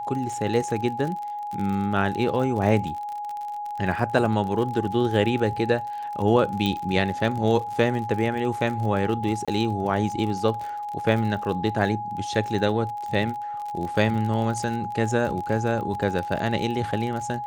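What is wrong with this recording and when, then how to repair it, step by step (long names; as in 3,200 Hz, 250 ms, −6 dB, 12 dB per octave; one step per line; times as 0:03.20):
surface crackle 45 per second −30 dBFS
whistle 830 Hz −29 dBFS
0:06.66: click −13 dBFS
0:09.45–0:09.48: drop-out 26 ms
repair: click removal
notch filter 830 Hz, Q 30
repair the gap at 0:09.45, 26 ms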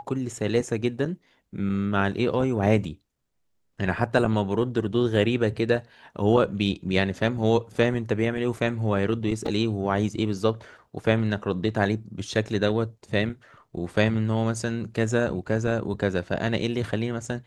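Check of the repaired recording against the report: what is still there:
0:06.66: click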